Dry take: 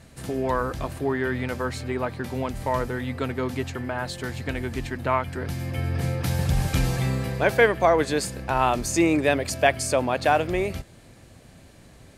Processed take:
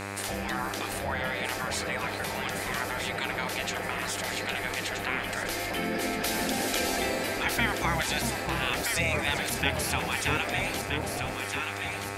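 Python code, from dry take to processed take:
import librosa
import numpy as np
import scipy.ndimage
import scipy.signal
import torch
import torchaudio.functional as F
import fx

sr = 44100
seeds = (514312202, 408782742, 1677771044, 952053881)

p1 = fx.peak_eq(x, sr, hz=1100.0, db=-11.5, octaves=0.35)
p2 = fx.spec_gate(p1, sr, threshold_db=-15, keep='weak')
p3 = fx.dmg_buzz(p2, sr, base_hz=100.0, harmonics=26, level_db=-49.0, tilt_db=-2, odd_only=False)
p4 = p3 + fx.echo_alternate(p3, sr, ms=637, hz=930.0, feedback_pct=64, wet_db=-5, dry=0)
y = fx.env_flatten(p4, sr, amount_pct=50)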